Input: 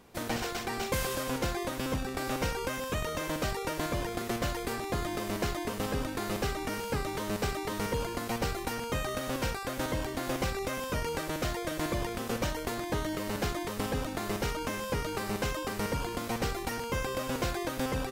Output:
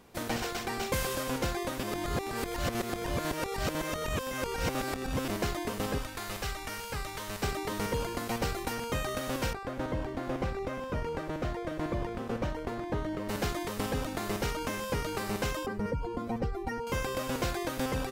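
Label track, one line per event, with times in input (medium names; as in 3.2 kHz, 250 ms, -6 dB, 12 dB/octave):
1.830000	5.280000	reverse
5.980000	7.430000	peaking EQ 280 Hz -11 dB 2.4 oct
9.530000	13.290000	low-pass 1.2 kHz 6 dB/octave
15.660000	16.870000	spectral contrast enhancement exponent 1.9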